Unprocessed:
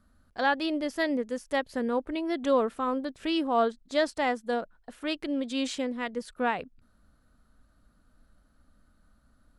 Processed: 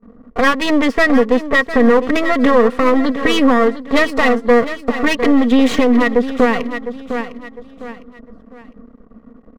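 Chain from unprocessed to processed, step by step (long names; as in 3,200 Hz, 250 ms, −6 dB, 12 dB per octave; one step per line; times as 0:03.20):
noise gate with hold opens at −56 dBFS
low-pass that shuts in the quiet parts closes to 590 Hz, open at −24 dBFS
bass and treble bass −12 dB, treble −12 dB
comb filter 4.3 ms, depth 75%
dynamic equaliser 440 Hz, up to −7 dB, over −41 dBFS, Q 2.8
downward compressor 4 to 1, threshold −35 dBFS, peak gain reduction 15.5 dB
half-wave rectification
hollow resonant body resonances 230/450/1,100/1,900 Hz, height 12 dB, ringing for 35 ms
on a send: repeating echo 705 ms, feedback 34%, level −13 dB
on the sum: boost into a limiter +25.5 dB
level −1 dB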